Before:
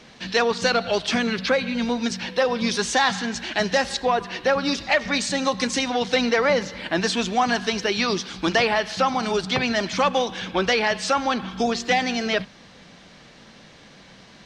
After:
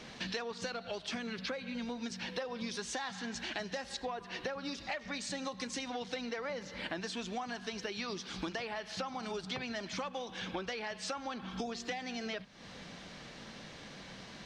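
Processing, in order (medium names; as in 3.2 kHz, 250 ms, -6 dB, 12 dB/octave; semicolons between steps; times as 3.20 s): compression 10:1, threshold -35 dBFS, peak gain reduction 20 dB; trim -1.5 dB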